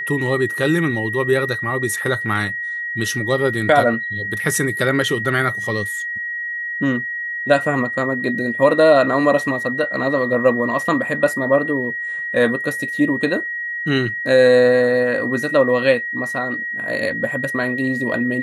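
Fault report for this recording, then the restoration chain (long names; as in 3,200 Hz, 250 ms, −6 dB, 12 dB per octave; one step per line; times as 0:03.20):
whistle 1,900 Hz −23 dBFS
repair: notch filter 1,900 Hz, Q 30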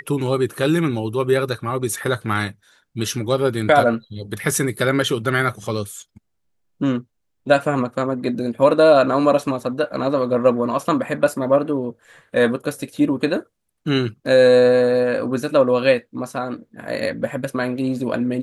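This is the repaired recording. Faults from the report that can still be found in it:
none of them is left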